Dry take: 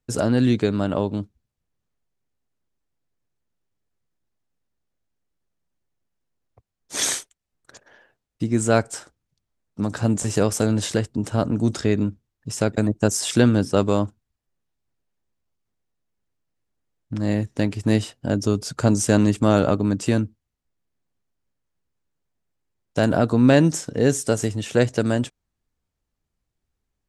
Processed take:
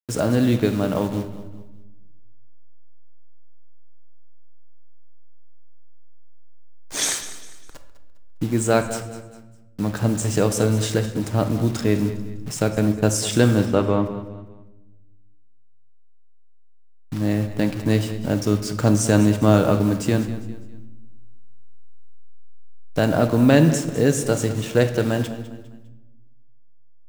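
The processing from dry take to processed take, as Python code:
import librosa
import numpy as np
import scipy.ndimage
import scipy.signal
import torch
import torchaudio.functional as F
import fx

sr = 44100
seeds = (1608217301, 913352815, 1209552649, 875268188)

y = fx.delta_hold(x, sr, step_db=-34.0)
y = fx.lowpass(y, sr, hz=fx.line((13.65, 3800.0), (14.05, 1900.0)), slope=12, at=(13.65, 14.05), fade=0.02)
y = fx.echo_feedback(y, sr, ms=202, feedback_pct=37, wet_db=-15.0)
y = fx.room_shoebox(y, sr, seeds[0], volume_m3=540.0, walls='mixed', distance_m=0.52)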